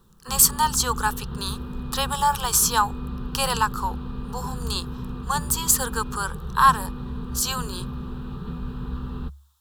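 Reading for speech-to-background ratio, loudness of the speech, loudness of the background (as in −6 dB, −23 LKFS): 11.0 dB, −23.0 LKFS, −34.0 LKFS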